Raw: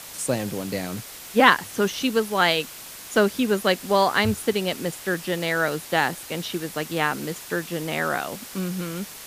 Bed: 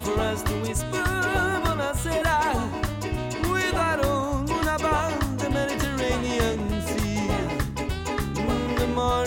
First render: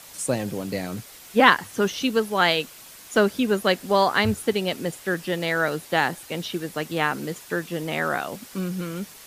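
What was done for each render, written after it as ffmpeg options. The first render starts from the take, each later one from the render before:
-af "afftdn=nr=6:nf=-40"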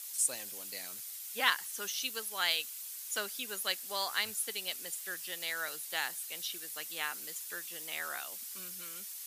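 -af "aderivative"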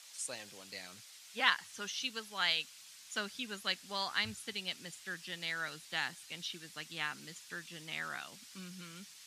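-af "asubboost=boost=8.5:cutoff=170,lowpass=5k"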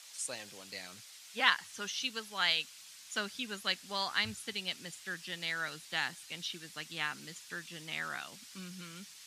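-af "volume=2dB"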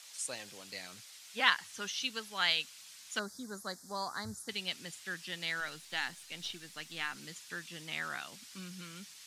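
-filter_complex "[0:a]asettb=1/sr,asplit=3[a][b][c];[a]atrim=end=3.194[d];[b]atrim=start=3.19:end=4.49,asetpts=PTS-STARTPTS,afade=t=in:d=0.004:c=qsin,afade=t=out:st=1.296:d=0.004:c=qsin,asuperstop=centerf=2700:order=4:qfactor=0.71[e];[c]atrim=start=4.486[f];[d][e]acrossfade=d=0.004:c1=hsin:c2=qsin[g];[g][f]acrossfade=d=0.004:c1=qsin:c2=hsin,asettb=1/sr,asplit=3[h][i][j];[h]atrim=end=5.604[k];[i]atrim=start=5.6:end=7.16,asetpts=PTS-STARTPTS,afade=t=in:d=0.004:c=qsin,afade=t=out:st=1.556:d=0.004:c=qsin,aeval=exprs='if(lt(val(0),0),0.708*val(0),val(0))':c=same[l];[j]atrim=start=7.156[m];[k][l]acrossfade=d=0.004:c1=hsin:c2=qsin[n];[n][m]acrossfade=d=0.004:c1=qsin:c2=hsin"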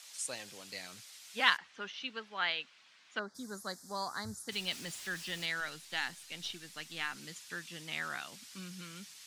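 -filter_complex "[0:a]asplit=3[a][b][c];[a]afade=t=out:st=1.56:d=0.02[d];[b]highpass=220,lowpass=2.5k,afade=t=in:st=1.56:d=0.02,afade=t=out:st=3.34:d=0.02[e];[c]afade=t=in:st=3.34:d=0.02[f];[d][e][f]amix=inputs=3:normalize=0,asettb=1/sr,asplit=3[g][h][i];[g]atrim=end=4.524[j];[h]atrim=start=4.52:end=5.46,asetpts=PTS-STARTPTS,afade=t=in:d=0.004:c=qsin,afade=t=out:st=0.936:d=0.004:c=qsin,aeval=exprs='val(0)+0.5*0.00501*sgn(val(0))':c=same[k];[i]atrim=start=5.456[l];[j][k]acrossfade=d=0.004:c1=hsin:c2=qsin[m];[m][l]acrossfade=d=0.004:c1=qsin:c2=hsin"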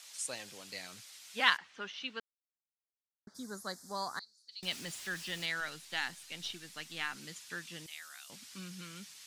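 -filter_complex "[0:a]asettb=1/sr,asplit=3[a][b][c];[a]atrim=end=4.194[d];[b]atrim=start=4.19:end=4.63,asetpts=PTS-STARTPTS,afade=t=in:d=0.004:c=qsin,afade=t=out:st=0.436:d=0.004:c=qsin,bandpass=f=4.4k:t=q:w=11[e];[c]atrim=start=4.626[f];[d][e]acrossfade=d=0.004:c1=hsin:c2=qsin[g];[g][f]acrossfade=d=0.004:c1=qsin:c2=hsin,asettb=1/sr,asplit=3[h][i][j];[h]atrim=end=7.864[k];[i]atrim=start=7.86:end=8.3,asetpts=PTS-STARTPTS,afade=t=in:d=0.004:c=qsin,afade=t=out:st=0.436:d=0.004:c=qsin,aderivative[l];[j]atrim=start=8.296[m];[k][l]acrossfade=d=0.004:c1=hsin:c2=qsin[n];[n][m]acrossfade=d=0.004:c1=qsin:c2=hsin,asplit=3[o][p][q];[o]atrim=end=2.2,asetpts=PTS-STARTPTS,afade=t=out:st=2.196:d=0.004:c=hsin[r];[p]atrim=start=2.2:end=3.27,asetpts=PTS-STARTPTS,volume=0[s];[q]atrim=start=3.27,asetpts=PTS-STARTPTS,afade=t=in:d=0.004:c=hsin[t];[r][s][t]concat=n=3:v=0:a=1"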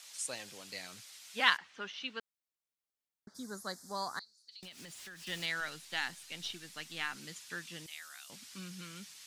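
-filter_complex "[0:a]asettb=1/sr,asplit=3[a][b][c];[a]atrim=end=4.214[d];[b]atrim=start=4.21:end=5.27,asetpts=PTS-STARTPTS,afade=t=in:d=0.004:c=qsin,afade=t=out:st=1.056:d=0.004:c=qsin,acompressor=threshold=-47dB:ratio=6:attack=3.2:release=140:knee=1:detection=peak[e];[c]atrim=start=5.266[f];[d][e]acrossfade=d=0.004:c1=hsin:c2=qsin[g];[g][f]acrossfade=d=0.004:c1=qsin:c2=hsin"

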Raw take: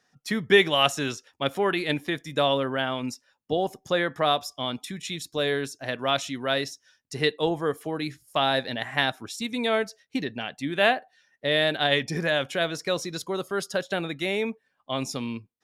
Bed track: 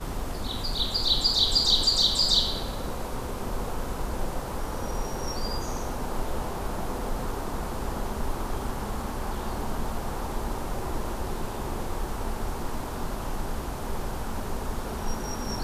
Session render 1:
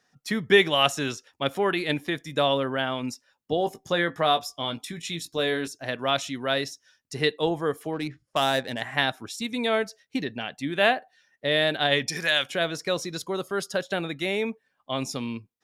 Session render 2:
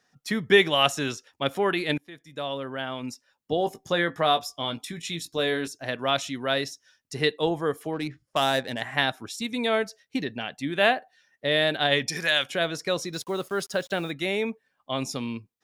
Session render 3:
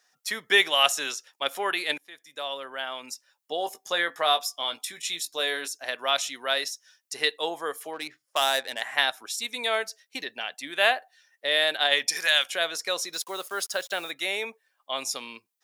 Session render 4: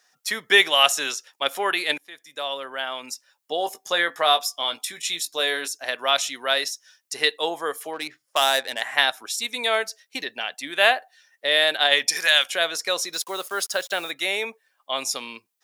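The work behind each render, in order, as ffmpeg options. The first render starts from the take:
-filter_complex "[0:a]asettb=1/sr,asplit=3[a][b][c];[a]atrim=end=3.594[d];[b]atrim=start=3.59:end=5.68,asetpts=PTS-STARTPTS,afade=t=in:d=0.004:c=qsin,afade=t=out:st=2.086:d=0.004:c=qsin,asplit=2[e][f];[f]adelay=18,volume=-8.5dB[g];[e][g]amix=inputs=2:normalize=0,atrim=end_sample=92169[h];[c]atrim=start=5.676[i];[d][h]acrossfade=d=0.004:c1=hsin:c2=qsin[j];[j][i]acrossfade=d=0.004:c1=qsin:c2=hsin,asettb=1/sr,asplit=3[k][l][m];[k]atrim=end=7.934[n];[l]atrim=start=7.93:end=8.82,asetpts=PTS-STARTPTS,afade=t=in:d=0.004:c=qsin,afade=t=out:st=0.886:d=0.004:c=qsin,adynamicsmooth=sensitivity=4:basefreq=2k[o];[m]atrim=start=8.816[p];[n][o]acrossfade=d=0.004:c1=hsin:c2=qsin[q];[q][p]acrossfade=d=0.004:c1=qsin:c2=hsin,asettb=1/sr,asplit=3[r][s][t];[r]atrim=end=12.084[u];[s]atrim=start=12.08:end=12.5,asetpts=PTS-STARTPTS,afade=t=in:d=0.004:c=qsin,afade=t=out:st=0.416:d=0.004:c=qsin,tiltshelf=f=1.2k:g=-9[v];[t]atrim=start=12.496[w];[u][v]acrossfade=d=0.004:c1=hsin:c2=qsin[x];[x][w]acrossfade=d=0.004:c1=qsin:c2=hsin"
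-filter_complex "[0:a]asettb=1/sr,asplit=3[a][b][c];[a]atrim=end=13.134[d];[b]atrim=start=13.13:end=14.11,asetpts=PTS-STARTPTS,afade=t=in:d=0.004:c=qsin,afade=t=out:st=0.976:d=0.004:c=qsin,acrusher=bits=7:mix=0:aa=0.5[e];[c]atrim=start=14.106[f];[d][e]acrossfade=d=0.004:c1=hsin:c2=qsin[g];[g][f]acrossfade=d=0.004:c1=qsin:c2=hsin,asplit=2[h][i];[h]atrim=end=1.98,asetpts=PTS-STARTPTS,afade=t=out:st=1.976:d=0.004:c=hsin:silence=0.0841395[j];[i]atrim=start=1.98,asetpts=PTS-STARTPTS,afade=t=in:d=1.62:silence=0.0841395[k];[j][k]concat=n=2:v=0:a=1"
-af "highpass=630,highshelf=f=5.3k:g=9"
-af "volume=4dB,alimiter=limit=-2dB:level=0:latency=1"

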